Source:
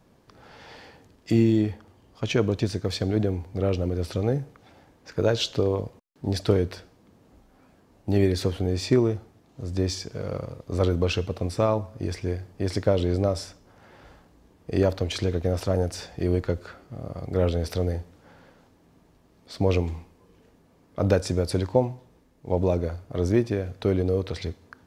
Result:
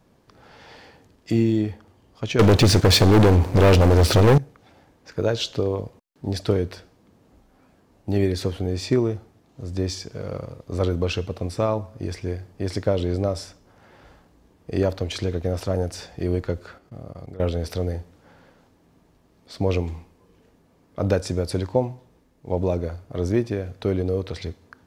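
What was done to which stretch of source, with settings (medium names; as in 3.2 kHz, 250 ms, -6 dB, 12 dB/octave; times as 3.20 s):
2.39–4.38 s: waveshaping leveller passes 5
16.78–17.40 s: level held to a coarse grid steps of 19 dB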